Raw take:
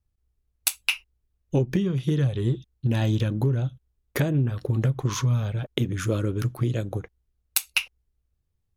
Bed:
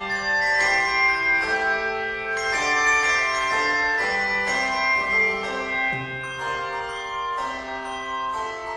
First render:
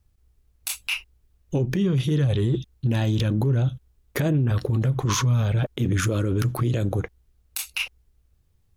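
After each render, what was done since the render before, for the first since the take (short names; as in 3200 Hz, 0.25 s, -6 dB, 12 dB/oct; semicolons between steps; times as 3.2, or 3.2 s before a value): in parallel at +2.5 dB: negative-ratio compressor -30 dBFS, ratio -1; on the sum: limiter -14.5 dBFS, peak gain reduction 11.5 dB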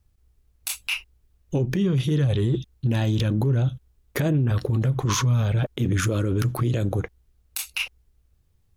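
nothing audible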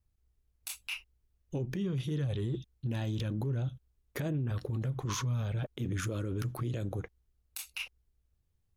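gain -11.5 dB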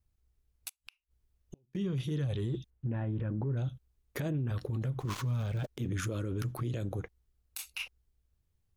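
0.68–1.75 flipped gate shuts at -34 dBFS, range -37 dB; 2.7–3.57 LPF 1900 Hz 24 dB/oct; 5–5.78 switching dead time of 0.11 ms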